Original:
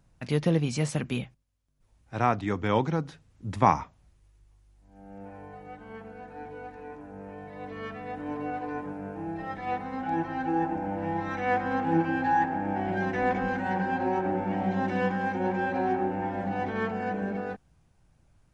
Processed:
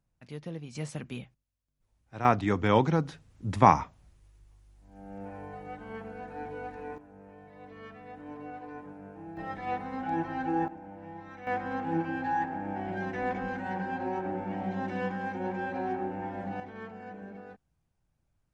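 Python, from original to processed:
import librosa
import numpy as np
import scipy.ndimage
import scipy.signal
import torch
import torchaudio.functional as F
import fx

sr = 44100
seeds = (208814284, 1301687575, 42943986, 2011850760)

y = fx.gain(x, sr, db=fx.steps((0.0, -15.0), (0.75, -8.5), (2.25, 2.0), (6.98, -9.0), (9.37, -2.0), (10.68, -14.0), (11.47, -5.5), (16.6, -13.0)))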